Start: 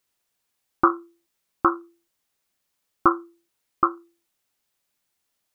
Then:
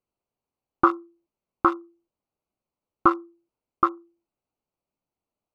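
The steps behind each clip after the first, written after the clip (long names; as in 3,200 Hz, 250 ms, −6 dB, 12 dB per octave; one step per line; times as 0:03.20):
adaptive Wiener filter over 25 samples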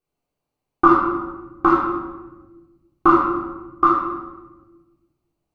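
rectangular room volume 680 cubic metres, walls mixed, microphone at 3.6 metres
level −1 dB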